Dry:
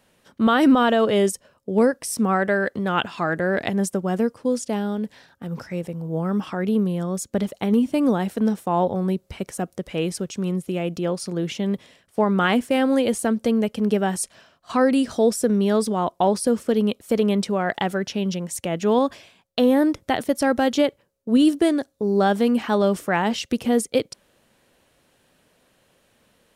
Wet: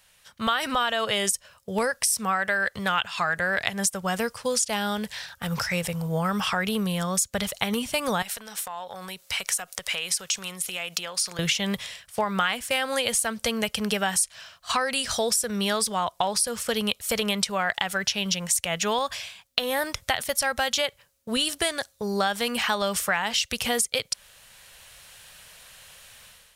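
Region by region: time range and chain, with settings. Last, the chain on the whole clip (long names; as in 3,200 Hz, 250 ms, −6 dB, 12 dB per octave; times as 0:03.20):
0:08.22–0:11.39: high-pass filter 800 Hz 6 dB per octave + downward compressor 8 to 1, threshold −36 dBFS
whole clip: automatic gain control; guitar amp tone stack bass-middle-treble 10-0-10; downward compressor, threshold −29 dBFS; level +7.5 dB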